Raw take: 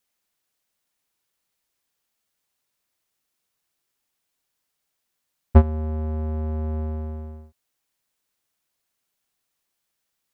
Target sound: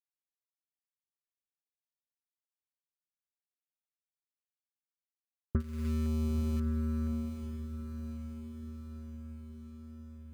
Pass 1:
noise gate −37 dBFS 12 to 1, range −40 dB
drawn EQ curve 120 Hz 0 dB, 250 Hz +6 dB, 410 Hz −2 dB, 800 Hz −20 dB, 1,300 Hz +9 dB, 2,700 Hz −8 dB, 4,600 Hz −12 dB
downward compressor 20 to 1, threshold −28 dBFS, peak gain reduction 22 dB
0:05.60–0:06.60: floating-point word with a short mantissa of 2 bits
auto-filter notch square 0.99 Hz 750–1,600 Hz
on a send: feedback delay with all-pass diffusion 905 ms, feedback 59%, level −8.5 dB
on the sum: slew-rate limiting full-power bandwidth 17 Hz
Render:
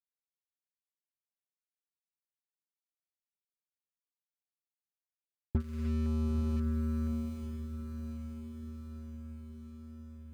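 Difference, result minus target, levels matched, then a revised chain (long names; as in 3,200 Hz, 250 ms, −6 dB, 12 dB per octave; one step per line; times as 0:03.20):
slew-rate limiting: distortion +13 dB
noise gate −37 dBFS 12 to 1, range −40 dB
drawn EQ curve 120 Hz 0 dB, 250 Hz +6 dB, 410 Hz −2 dB, 800 Hz −20 dB, 1,300 Hz +9 dB, 2,700 Hz −8 dB, 4,600 Hz −12 dB
downward compressor 20 to 1, threshold −28 dBFS, peak gain reduction 22 dB
0:05.60–0:06.60: floating-point word with a short mantissa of 2 bits
auto-filter notch square 0.99 Hz 750–1,600 Hz
on a send: feedback delay with all-pass diffusion 905 ms, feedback 59%, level −8.5 dB
on the sum: slew-rate limiting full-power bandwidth 58.5 Hz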